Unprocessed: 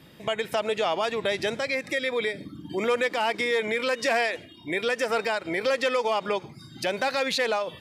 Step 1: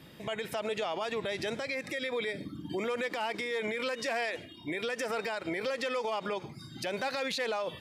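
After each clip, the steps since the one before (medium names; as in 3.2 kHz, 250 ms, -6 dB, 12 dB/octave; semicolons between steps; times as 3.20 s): peak limiter -24 dBFS, peak gain reduction 9 dB; trim -1 dB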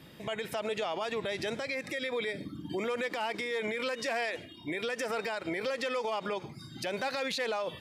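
no audible change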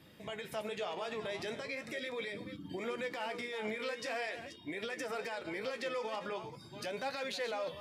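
chunks repeated in reverse 285 ms, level -10 dB; flange 0.41 Hz, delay 9.1 ms, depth 9.7 ms, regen +50%; trim -2 dB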